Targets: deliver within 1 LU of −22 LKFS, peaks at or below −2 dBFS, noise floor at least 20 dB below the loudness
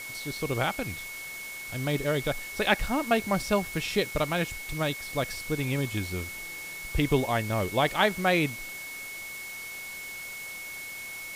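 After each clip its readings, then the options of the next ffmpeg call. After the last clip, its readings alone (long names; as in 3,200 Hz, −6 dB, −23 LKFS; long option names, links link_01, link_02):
interfering tone 2,200 Hz; level of the tone −38 dBFS; background noise floor −40 dBFS; target noise floor −50 dBFS; integrated loudness −29.5 LKFS; sample peak −8.0 dBFS; target loudness −22.0 LKFS
→ -af "bandreject=frequency=2200:width=30"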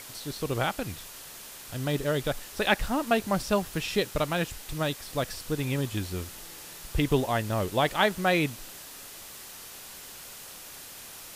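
interfering tone none found; background noise floor −45 dBFS; target noise floor −49 dBFS
→ -af "afftdn=noise_reduction=6:noise_floor=-45"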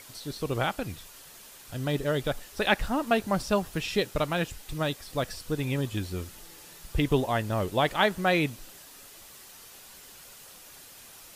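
background noise floor −50 dBFS; integrated loudness −29.0 LKFS; sample peak −8.0 dBFS; target loudness −22.0 LKFS
→ -af "volume=7dB,alimiter=limit=-2dB:level=0:latency=1"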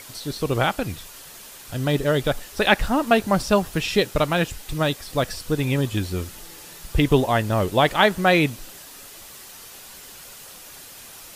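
integrated loudness −22.0 LKFS; sample peak −2.0 dBFS; background noise floor −43 dBFS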